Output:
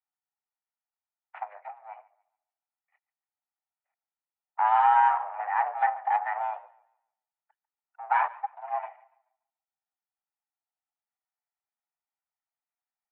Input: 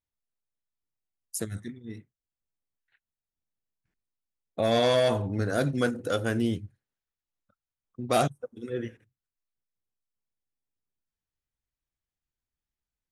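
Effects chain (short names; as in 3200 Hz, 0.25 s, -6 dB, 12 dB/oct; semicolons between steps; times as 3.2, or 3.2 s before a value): minimum comb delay 1.9 ms; tilt shelf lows +6 dB; mistuned SSB +310 Hz 400–2100 Hz; warbling echo 0.143 s, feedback 30%, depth 69 cents, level -21 dB; gain +2.5 dB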